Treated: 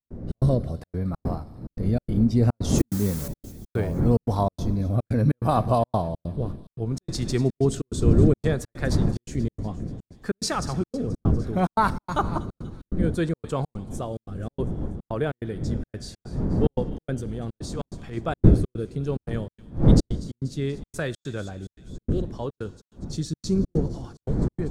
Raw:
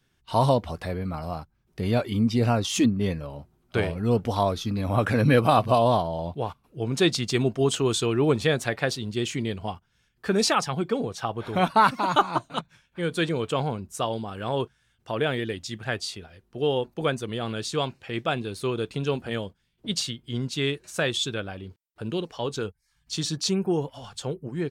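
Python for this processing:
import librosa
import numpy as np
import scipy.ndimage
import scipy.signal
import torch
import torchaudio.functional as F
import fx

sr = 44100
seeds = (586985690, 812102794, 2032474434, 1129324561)

y = fx.dmg_wind(x, sr, seeds[0], corner_hz=250.0, level_db=-30.0)
y = fx.rotary(y, sr, hz=0.65)
y = fx.quant_dither(y, sr, seeds[1], bits=6, dither='triangular', at=(2.78, 3.28))
y = fx.echo_wet_highpass(y, sr, ms=241, feedback_pct=63, hz=2400.0, wet_db=-15.0)
y = fx.transient(y, sr, attack_db=-10, sustain_db=4, at=(16.87, 18.17))
y = fx.peak_eq(y, sr, hz=2900.0, db=-12.0, octaves=0.87)
y = fx.rev_schroeder(y, sr, rt60_s=1.4, comb_ms=26, drr_db=18.0)
y = fx.step_gate(y, sr, bpm=144, pattern='.xx.xxxx', floor_db=-60.0, edge_ms=4.5)
y = fx.low_shelf(y, sr, hz=240.0, db=7.0)
y = y * 10.0 ** (-1.0 / 20.0)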